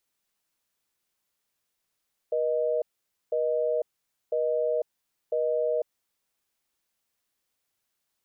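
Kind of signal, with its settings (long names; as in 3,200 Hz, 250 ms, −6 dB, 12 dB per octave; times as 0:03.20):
call progress tone busy tone, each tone −26 dBFS 3.75 s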